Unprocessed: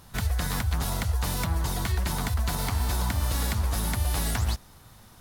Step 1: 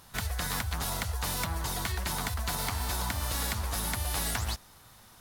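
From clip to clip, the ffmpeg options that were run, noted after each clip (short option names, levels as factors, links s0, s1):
-af "lowshelf=f=430:g=-8"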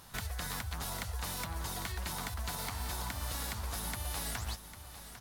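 -af "acompressor=threshold=0.01:ratio=2,aecho=1:1:800:0.237"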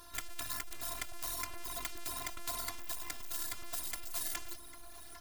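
-af "afftfilt=real='hypot(re,im)*cos(PI*b)':imag='0':win_size=512:overlap=0.75,aeval=exprs='0.112*(cos(1*acos(clip(val(0)/0.112,-1,1)))-cos(1*PI/2))+0.0224*(cos(8*acos(clip(val(0)/0.112,-1,1)))-cos(8*PI/2))':c=same,bandreject=f=840:w=12,volume=2.37"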